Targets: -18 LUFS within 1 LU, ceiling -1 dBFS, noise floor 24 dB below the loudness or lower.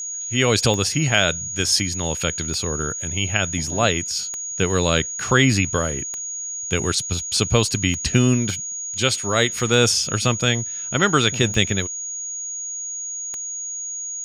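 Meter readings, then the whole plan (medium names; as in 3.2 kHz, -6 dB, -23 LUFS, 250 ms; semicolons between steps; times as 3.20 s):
clicks found 8; steady tone 6.7 kHz; tone level -27 dBFS; loudness -20.5 LUFS; peak level -2.5 dBFS; loudness target -18.0 LUFS
-> de-click; band-stop 6.7 kHz, Q 30; trim +2.5 dB; peak limiter -1 dBFS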